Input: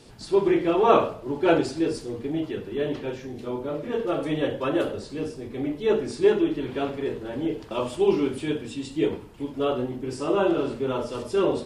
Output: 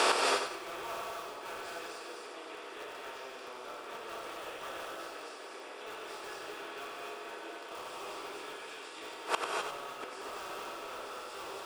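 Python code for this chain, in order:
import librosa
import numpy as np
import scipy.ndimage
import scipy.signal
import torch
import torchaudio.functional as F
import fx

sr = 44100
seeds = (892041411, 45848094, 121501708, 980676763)

p1 = fx.bin_compress(x, sr, power=0.4)
p2 = scipy.signal.sosfilt(scipy.signal.butter(2, 960.0, 'highpass', fs=sr, output='sos'), p1)
p3 = (np.mod(10.0 ** (20.0 / 20.0) * p2 + 1.0, 2.0) - 1.0) / 10.0 ** (20.0 / 20.0)
p4 = p2 + (p3 * 10.0 ** (-6.0 / 20.0))
p5 = fx.gate_flip(p4, sr, shuts_db=-20.0, range_db=-27)
p6 = p5 + fx.echo_feedback(p5, sr, ms=93, feedback_pct=34, wet_db=-7, dry=0)
p7 = fx.rev_gated(p6, sr, seeds[0], gate_ms=280, shape='rising', drr_db=0.5)
y = p7 * 10.0 ** (5.0 / 20.0)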